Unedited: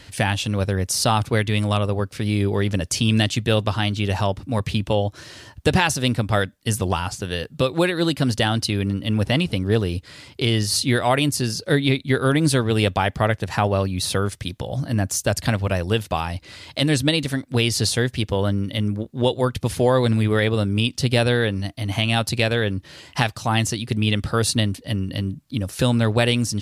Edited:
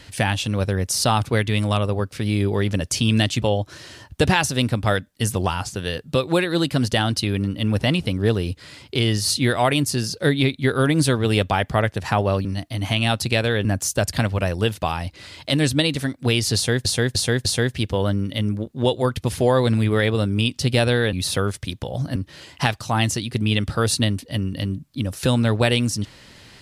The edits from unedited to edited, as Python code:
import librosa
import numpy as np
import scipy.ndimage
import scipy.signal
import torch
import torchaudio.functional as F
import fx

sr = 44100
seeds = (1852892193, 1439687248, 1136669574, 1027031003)

y = fx.edit(x, sr, fx.cut(start_s=3.42, length_s=1.46),
    fx.swap(start_s=13.91, length_s=1.03, other_s=21.52, other_length_s=1.2),
    fx.repeat(start_s=17.84, length_s=0.3, count=4), tone=tone)